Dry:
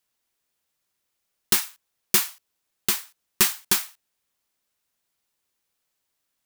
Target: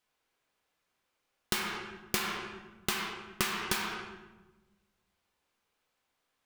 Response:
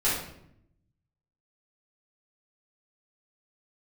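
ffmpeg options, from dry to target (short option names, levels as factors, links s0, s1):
-filter_complex "[0:a]highshelf=f=7100:g=-11.5,bandreject=f=1800:w=26,asplit=2[s0][s1];[s1]bass=f=250:g=-11,treble=f=4000:g=1[s2];[1:a]atrim=start_sample=2205,asetrate=26460,aresample=44100,lowpass=3200[s3];[s2][s3]afir=irnorm=-1:irlink=0,volume=0.237[s4];[s0][s4]amix=inputs=2:normalize=0,acompressor=threshold=0.0398:ratio=6"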